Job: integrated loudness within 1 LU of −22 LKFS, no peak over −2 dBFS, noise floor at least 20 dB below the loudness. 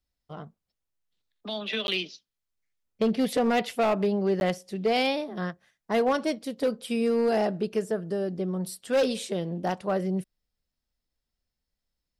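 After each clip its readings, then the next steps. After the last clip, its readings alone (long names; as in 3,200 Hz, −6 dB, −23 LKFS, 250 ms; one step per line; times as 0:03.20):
share of clipped samples 0.9%; peaks flattened at −18.5 dBFS; number of dropouts 2; longest dropout 11 ms; integrated loudness −27.5 LKFS; sample peak −18.5 dBFS; target loudness −22.0 LKFS
→ clipped peaks rebuilt −18.5 dBFS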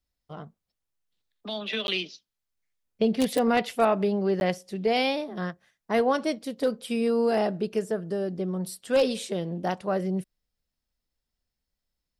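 share of clipped samples 0.0%; number of dropouts 2; longest dropout 11 ms
→ repair the gap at 0:01.87/0:04.40, 11 ms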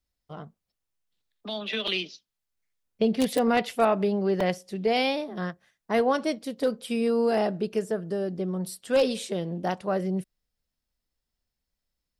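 number of dropouts 0; integrated loudness −27.0 LKFS; sample peak −9.5 dBFS; target loudness −22.0 LKFS
→ level +5 dB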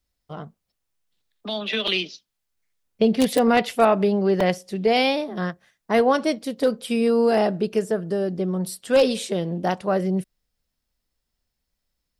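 integrated loudness −22.0 LKFS; sample peak −4.5 dBFS; background noise floor −80 dBFS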